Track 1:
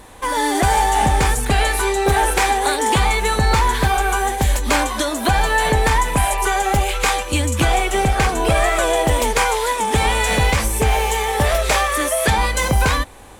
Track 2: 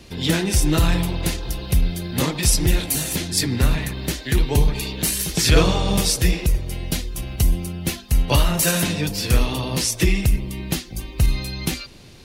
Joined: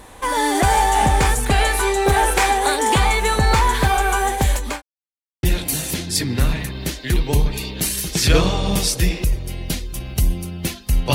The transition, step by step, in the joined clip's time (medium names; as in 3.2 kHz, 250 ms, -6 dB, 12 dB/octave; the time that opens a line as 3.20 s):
track 1
4.38–4.82 s: fade out equal-power
4.82–5.43 s: mute
5.43 s: go over to track 2 from 2.65 s